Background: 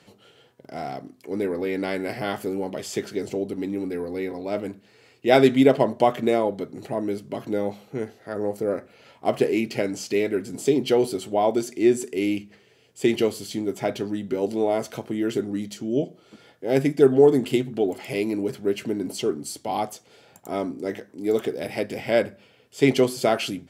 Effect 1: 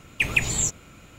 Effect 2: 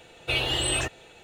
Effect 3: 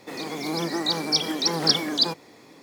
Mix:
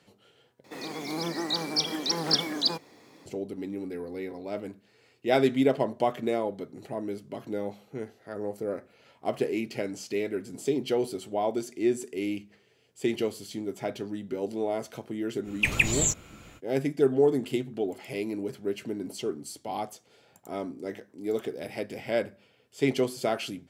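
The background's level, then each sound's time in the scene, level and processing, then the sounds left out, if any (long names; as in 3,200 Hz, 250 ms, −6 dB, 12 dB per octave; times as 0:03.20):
background −7 dB
0:00.64: overwrite with 3 −4.5 dB
0:15.43: mix in 1 −1.5 dB, fades 0.05 s
not used: 2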